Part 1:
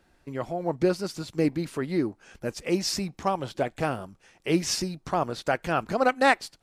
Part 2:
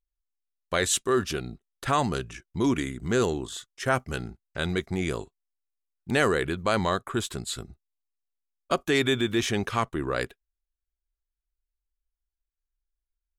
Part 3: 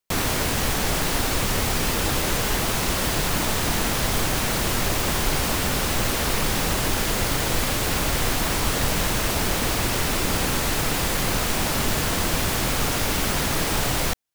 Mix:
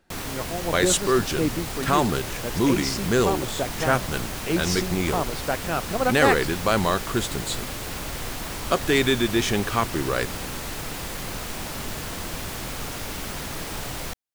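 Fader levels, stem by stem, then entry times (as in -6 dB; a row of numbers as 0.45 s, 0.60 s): -1.0 dB, +3.0 dB, -9.0 dB; 0.00 s, 0.00 s, 0.00 s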